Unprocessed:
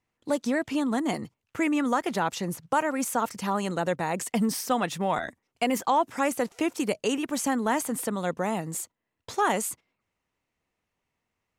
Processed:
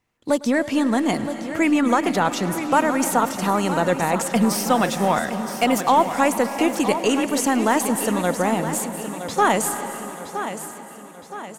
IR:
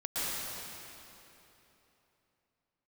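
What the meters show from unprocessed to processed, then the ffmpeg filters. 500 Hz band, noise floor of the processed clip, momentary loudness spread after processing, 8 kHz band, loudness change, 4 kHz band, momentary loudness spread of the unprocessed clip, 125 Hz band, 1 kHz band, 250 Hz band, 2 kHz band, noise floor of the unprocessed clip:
+7.5 dB, −40 dBFS, 11 LU, +7.5 dB, +7.0 dB, +7.5 dB, 7 LU, +7.5 dB, +7.5 dB, +7.5 dB, +7.5 dB, −83 dBFS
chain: -filter_complex "[0:a]aecho=1:1:968|1936|2904|3872|4840:0.299|0.143|0.0688|0.033|0.0158,aeval=exprs='0.266*(cos(1*acos(clip(val(0)/0.266,-1,1)))-cos(1*PI/2))+0.00266*(cos(6*acos(clip(val(0)/0.266,-1,1)))-cos(6*PI/2))':channel_layout=same,asplit=2[link_01][link_02];[1:a]atrim=start_sample=2205,adelay=104[link_03];[link_02][link_03]afir=irnorm=-1:irlink=0,volume=-17.5dB[link_04];[link_01][link_04]amix=inputs=2:normalize=0,volume=6.5dB"

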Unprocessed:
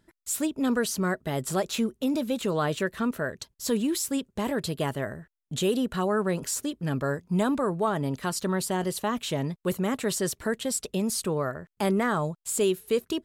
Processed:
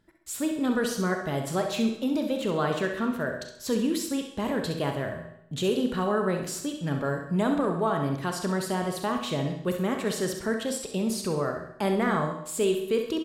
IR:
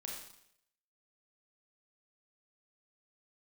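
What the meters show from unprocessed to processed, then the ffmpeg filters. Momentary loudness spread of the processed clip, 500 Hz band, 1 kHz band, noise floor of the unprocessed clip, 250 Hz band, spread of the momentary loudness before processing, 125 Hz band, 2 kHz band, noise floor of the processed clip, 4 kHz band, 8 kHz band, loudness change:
5 LU, +0.5 dB, +0.5 dB, −78 dBFS, +0.5 dB, 4 LU, 0.0 dB, +0.5 dB, −47 dBFS, −1.0 dB, −5.0 dB, 0.0 dB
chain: -filter_complex "[0:a]aecho=1:1:66|132|198|264:0.376|0.15|0.0601|0.0241,asplit=2[link_01][link_02];[1:a]atrim=start_sample=2205,lowpass=5600[link_03];[link_02][link_03]afir=irnorm=-1:irlink=0,volume=2.5dB[link_04];[link_01][link_04]amix=inputs=2:normalize=0,volume=-5.5dB"

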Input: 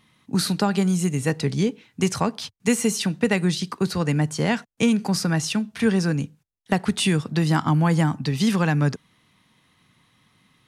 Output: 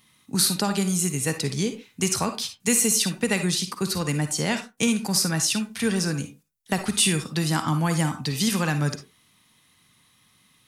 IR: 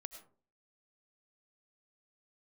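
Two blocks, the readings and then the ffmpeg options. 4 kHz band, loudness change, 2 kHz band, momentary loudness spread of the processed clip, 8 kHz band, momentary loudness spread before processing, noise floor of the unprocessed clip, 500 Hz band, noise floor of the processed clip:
+3.0 dB, −1.0 dB, −1.0 dB, 7 LU, +7.5 dB, 6 LU, −66 dBFS, −3.5 dB, −62 dBFS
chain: -filter_complex "[0:a]crystalizer=i=3:c=0[link_01];[1:a]atrim=start_sample=2205,afade=type=out:start_time=0.35:duration=0.01,atrim=end_sample=15876,asetrate=83790,aresample=44100[link_02];[link_01][link_02]afir=irnorm=-1:irlink=0,volume=6.5dB"

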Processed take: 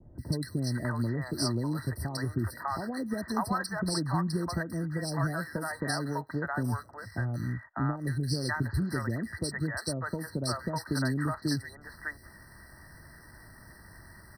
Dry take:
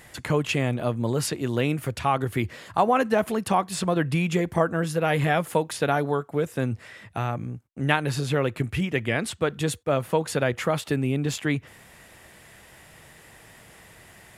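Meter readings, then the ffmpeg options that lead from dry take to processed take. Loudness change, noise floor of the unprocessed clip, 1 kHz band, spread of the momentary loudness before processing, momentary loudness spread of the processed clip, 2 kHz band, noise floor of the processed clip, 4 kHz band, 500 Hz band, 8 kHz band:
−7.0 dB, −51 dBFS, −9.5 dB, 6 LU, 21 LU, −6.5 dB, −53 dBFS, −4.5 dB, −13.0 dB, −4.5 dB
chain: -filter_complex "[0:a]adynamicequalizer=threshold=0.00708:dfrequency=1700:dqfactor=2.9:tfrequency=1700:tqfactor=2.9:attack=5:release=100:ratio=0.375:range=1.5:mode=cutabove:tftype=bell,acrossover=split=1600|7700[link_01][link_02][link_03];[link_01]acompressor=threshold=-26dB:ratio=4[link_04];[link_02]acompressor=threshold=-33dB:ratio=4[link_05];[link_03]acompressor=threshold=-49dB:ratio=4[link_06];[link_04][link_05][link_06]amix=inputs=3:normalize=0,equalizer=frequency=530:width=0.6:gain=-10.5,aecho=1:1:3.2:0.3,acrossover=split=120|710|2100[link_07][link_08][link_09][link_10];[link_10]aeval=exprs='sgn(val(0))*max(abs(val(0))-0.00141,0)':channel_layout=same[link_11];[link_07][link_08][link_09][link_11]amix=inputs=4:normalize=0,acrossover=split=620|2300[link_12][link_13][link_14];[link_14]adelay=180[link_15];[link_13]adelay=600[link_16];[link_12][link_16][link_15]amix=inputs=3:normalize=0,afftfilt=real='re*eq(mod(floor(b*sr/1024/2000),2),0)':imag='im*eq(mod(floor(b*sr/1024/2000),2),0)':win_size=1024:overlap=0.75,volume=5dB"

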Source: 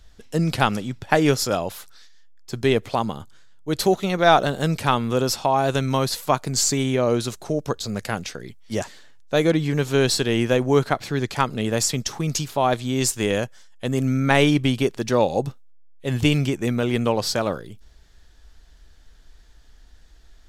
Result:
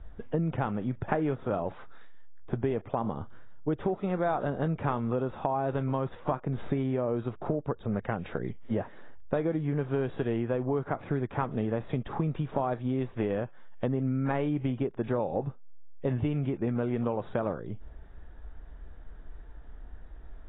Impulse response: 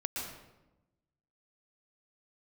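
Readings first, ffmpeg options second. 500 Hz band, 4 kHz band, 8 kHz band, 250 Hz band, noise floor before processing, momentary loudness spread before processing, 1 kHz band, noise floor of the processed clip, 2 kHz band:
−9.0 dB, −27.0 dB, below −40 dB, −7.5 dB, −50 dBFS, 11 LU, −10.5 dB, −47 dBFS, −15.0 dB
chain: -filter_complex "[0:a]lowpass=1200,asplit=2[link_01][link_02];[link_02]alimiter=limit=-12dB:level=0:latency=1,volume=-1dB[link_03];[link_01][link_03]amix=inputs=2:normalize=0,acompressor=threshold=-27dB:ratio=6" -ar 16000 -c:a aac -b:a 16k

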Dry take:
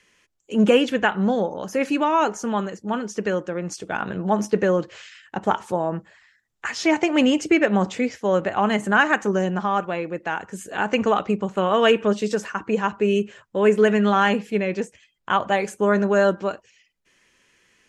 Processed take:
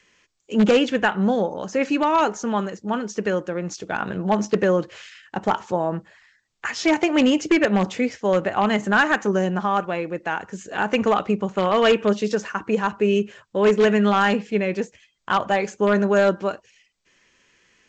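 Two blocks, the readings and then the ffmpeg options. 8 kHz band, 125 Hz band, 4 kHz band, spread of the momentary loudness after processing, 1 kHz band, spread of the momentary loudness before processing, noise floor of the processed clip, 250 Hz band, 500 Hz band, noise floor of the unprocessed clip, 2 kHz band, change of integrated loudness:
0.0 dB, +0.5 dB, +0.5 dB, 11 LU, 0.0 dB, 11 LU, −67 dBFS, +0.5 dB, +0.5 dB, −68 dBFS, 0.0 dB, +0.5 dB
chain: -filter_complex "[0:a]asplit=2[link_01][link_02];[link_02]aeval=exprs='(mod(3.16*val(0)+1,2)-1)/3.16':channel_layout=same,volume=-10.5dB[link_03];[link_01][link_03]amix=inputs=2:normalize=0,volume=-1.5dB" -ar 16000 -c:a g722

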